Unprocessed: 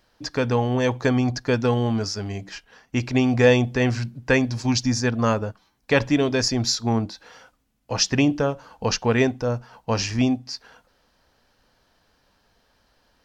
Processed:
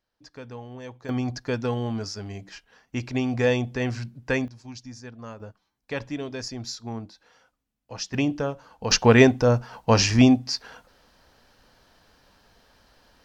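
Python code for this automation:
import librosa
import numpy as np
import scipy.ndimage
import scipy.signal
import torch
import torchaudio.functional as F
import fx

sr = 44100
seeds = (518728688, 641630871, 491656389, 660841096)

y = fx.gain(x, sr, db=fx.steps((0.0, -18.0), (1.09, -6.0), (4.48, -19.0), (5.4, -12.0), (8.14, -5.0), (8.91, 5.0)))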